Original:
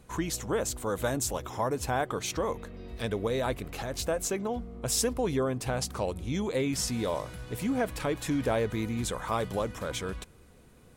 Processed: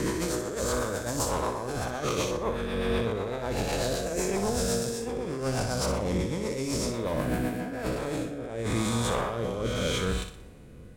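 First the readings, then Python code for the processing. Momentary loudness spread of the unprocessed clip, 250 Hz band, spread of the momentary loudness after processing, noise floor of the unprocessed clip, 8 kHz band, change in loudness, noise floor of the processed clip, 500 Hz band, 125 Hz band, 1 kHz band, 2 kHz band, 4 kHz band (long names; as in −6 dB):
7 LU, +2.0 dB, 5 LU, −56 dBFS, 0.0 dB, +1.5 dB, −45 dBFS, +1.5 dB, +3.0 dB, +1.0 dB, +2.0 dB, +2.5 dB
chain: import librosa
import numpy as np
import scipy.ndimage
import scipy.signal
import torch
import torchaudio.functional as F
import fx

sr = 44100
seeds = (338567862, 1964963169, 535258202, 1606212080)

p1 = fx.spec_swells(x, sr, rise_s=2.41)
p2 = fx.bass_treble(p1, sr, bass_db=2, treble_db=-5)
p3 = fx.over_compress(p2, sr, threshold_db=-28.0, ratio=-0.5)
p4 = 10.0 ** (-21.0 / 20.0) * np.tanh(p3 / 10.0 ** (-21.0 / 20.0))
p5 = fx.rotary_switch(p4, sr, hz=8.0, then_hz=0.8, switch_at_s=7.36)
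p6 = p5 + fx.room_flutter(p5, sr, wall_m=10.3, rt60_s=0.46, dry=0)
y = F.gain(torch.from_numpy(p6), 2.0).numpy()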